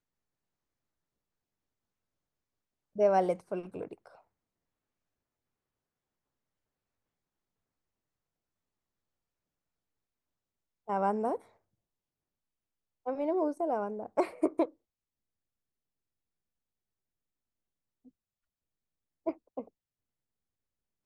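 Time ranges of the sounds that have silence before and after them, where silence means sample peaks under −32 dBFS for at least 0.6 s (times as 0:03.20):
0:02.99–0:03.93
0:10.90–0:11.36
0:13.07–0:14.65
0:19.27–0:19.61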